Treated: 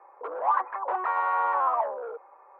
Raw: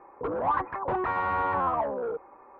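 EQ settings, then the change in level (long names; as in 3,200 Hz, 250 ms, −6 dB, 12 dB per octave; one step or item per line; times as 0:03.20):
high-pass filter 520 Hz 24 dB per octave
high-shelf EQ 3,200 Hz −10.5 dB
dynamic equaliser 1,100 Hz, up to +4 dB, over −35 dBFS, Q 1.3
0.0 dB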